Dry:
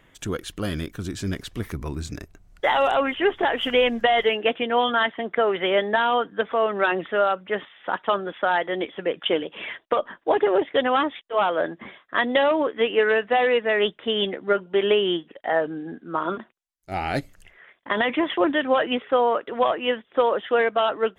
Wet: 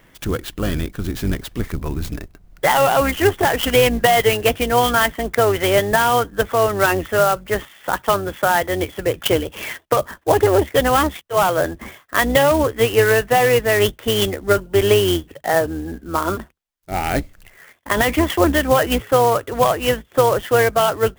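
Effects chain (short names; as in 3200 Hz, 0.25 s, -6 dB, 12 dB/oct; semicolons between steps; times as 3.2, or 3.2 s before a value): octaver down 2 oct, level -2 dB; clock jitter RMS 0.034 ms; gain +5 dB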